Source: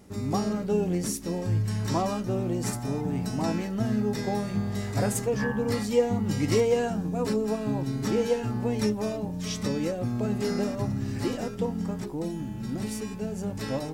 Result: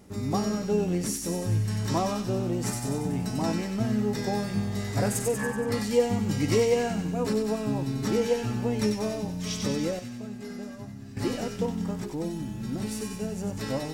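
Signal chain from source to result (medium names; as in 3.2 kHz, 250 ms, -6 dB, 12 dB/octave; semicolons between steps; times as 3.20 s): 5.31–5.72 s: tone controls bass -5 dB, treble -15 dB; 9.99–11.17 s: feedback comb 230 Hz, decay 0.24 s, harmonics odd, mix 80%; feedback echo behind a high-pass 94 ms, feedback 61%, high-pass 2 kHz, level -4 dB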